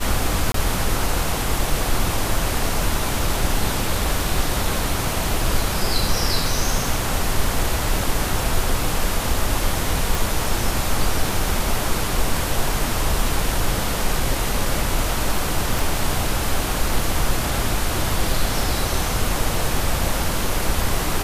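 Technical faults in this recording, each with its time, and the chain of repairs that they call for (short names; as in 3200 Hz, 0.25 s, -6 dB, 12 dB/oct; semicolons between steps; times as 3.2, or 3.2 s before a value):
0.52–0.54 gap 23 ms
10.15 pop
15.79 pop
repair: de-click; interpolate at 0.52, 23 ms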